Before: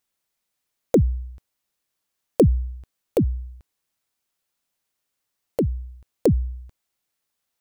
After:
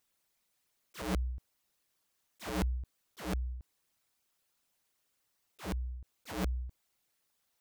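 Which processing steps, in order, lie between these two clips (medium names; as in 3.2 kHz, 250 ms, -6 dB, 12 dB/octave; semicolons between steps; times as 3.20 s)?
resonances exaggerated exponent 1.5; integer overflow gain 23.5 dB; slow attack 364 ms; trim +1 dB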